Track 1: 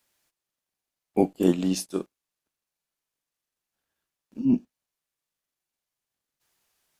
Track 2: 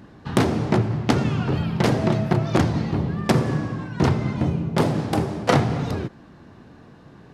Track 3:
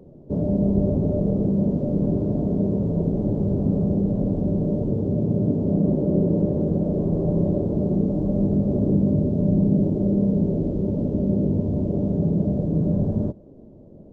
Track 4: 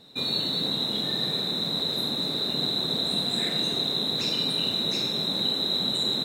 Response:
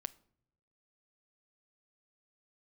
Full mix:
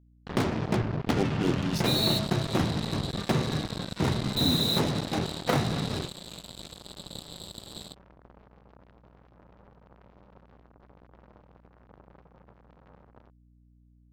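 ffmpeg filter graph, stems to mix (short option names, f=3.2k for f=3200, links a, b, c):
-filter_complex "[0:a]highshelf=f=3k:g=9.5,volume=-8dB,asplit=2[a][b];[1:a]volume=-8dB[c];[2:a]asoftclip=type=hard:threshold=-24.5dB,acrossover=split=210|610[d][e][f];[d]acompressor=threshold=-39dB:ratio=4[g];[e]acompressor=threshold=-47dB:ratio=4[h];[f]acompressor=threshold=-56dB:ratio=4[i];[g][h][i]amix=inputs=3:normalize=0,volume=-1.5dB[j];[3:a]adelay=1700,volume=0dB[k];[b]apad=whole_len=350558[l];[k][l]sidechaingate=range=-15dB:threshold=-57dB:ratio=16:detection=peak[m];[a][c][j][m]amix=inputs=4:normalize=0,lowpass=f=5.1k:w=0.5412,lowpass=f=5.1k:w=1.3066,acrusher=bits=4:mix=0:aa=0.5,aeval=exprs='val(0)+0.00126*(sin(2*PI*60*n/s)+sin(2*PI*2*60*n/s)/2+sin(2*PI*3*60*n/s)/3+sin(2*PI*4*60*n/s)/4+sin(2*PI*5*60*n/s)/5)':c=same"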